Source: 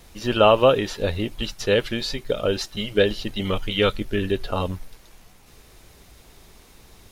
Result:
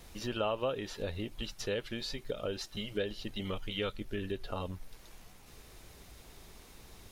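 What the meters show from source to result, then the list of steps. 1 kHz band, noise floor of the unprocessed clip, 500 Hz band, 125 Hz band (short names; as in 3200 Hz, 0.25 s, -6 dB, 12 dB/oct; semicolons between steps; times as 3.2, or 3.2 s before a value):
-17.0 dB, -51 dBFS, -16.0 dB, -13.5 dB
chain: compressor 2:1, threshold -37 dBFS, peak gain reduction 14.5 dB; gain -4 dB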